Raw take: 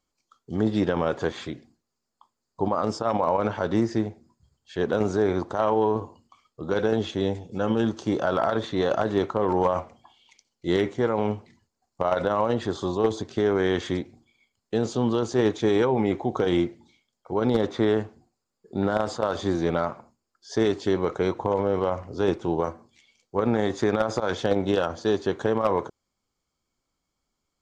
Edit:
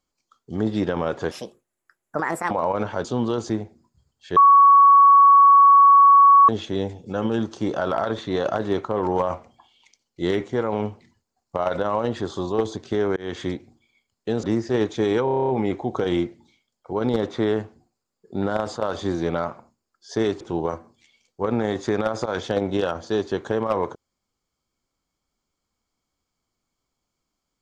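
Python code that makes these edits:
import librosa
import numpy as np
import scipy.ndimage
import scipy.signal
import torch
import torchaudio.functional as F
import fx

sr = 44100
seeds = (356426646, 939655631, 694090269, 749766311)

y = fx.edit(x, sr, fx.speed_span(start_s=1.31, length_s=1.84, speed=1.54),
    fx.swap(start_s=3.69, length_s=0.26, other_s=14.89, other_length_s=0.45),
    fx.bleep(start_s=4.82, length_s=2.12, hz=1120.0, db=-8.5),
    fx.fade_in_span(start_s=13.62, length_s=0.34, curve='qsin'),
    fx.stutter(start_s=15.89, slice_s=0.03, count=9),
    fx.cut(start_s=20.81, length_s=1.54), tone=tone)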